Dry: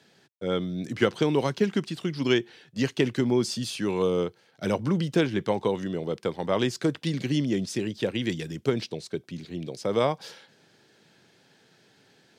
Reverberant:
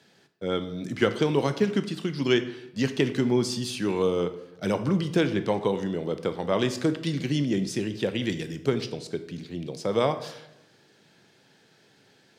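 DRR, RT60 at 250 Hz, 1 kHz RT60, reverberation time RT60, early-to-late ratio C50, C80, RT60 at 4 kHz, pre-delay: 9.5 dB, 1.0 s, 0.85 s, 0.90 s, 12.0 dB, 14.5 dB, 0.60 s, 14 ms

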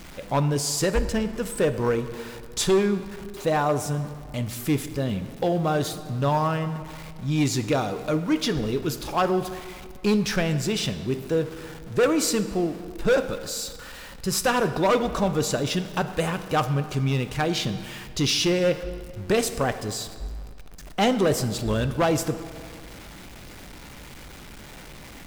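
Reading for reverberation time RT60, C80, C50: 2.0 s, 12.5 dB, 11.5 dB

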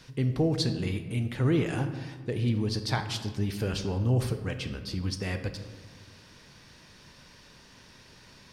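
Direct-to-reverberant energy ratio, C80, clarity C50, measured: 8.0 dB, 11.0 dB, 9.0 dB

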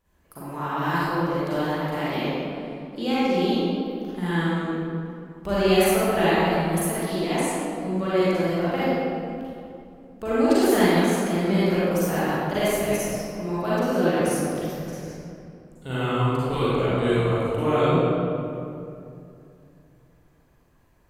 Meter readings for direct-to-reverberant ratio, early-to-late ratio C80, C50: -11.5 dB, -4.0 dB, -8.0 dB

